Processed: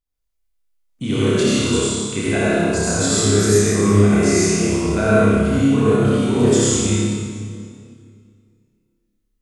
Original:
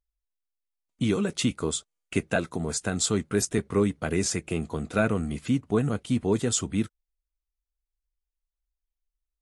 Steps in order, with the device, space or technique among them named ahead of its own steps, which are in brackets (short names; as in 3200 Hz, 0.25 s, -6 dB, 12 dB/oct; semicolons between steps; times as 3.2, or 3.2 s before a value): tunnel (flutter echo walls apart 5 m, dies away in 0.58 s; reverb RT60 2.2 s, pre-delay 65 ms, DRR -8 dB); gain -1.5 dB